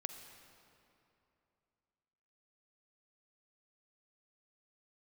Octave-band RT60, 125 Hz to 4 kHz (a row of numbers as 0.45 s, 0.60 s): 3.1 s, 3.0 s, 2.9 s, 2.8 s, 2.4 s, 1.9 s